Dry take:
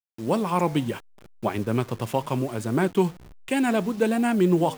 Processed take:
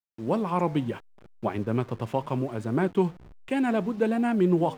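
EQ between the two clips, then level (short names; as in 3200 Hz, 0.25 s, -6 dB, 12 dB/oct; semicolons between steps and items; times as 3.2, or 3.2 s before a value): LPF 2000 Hz 6 dB/oct; -2.0 dB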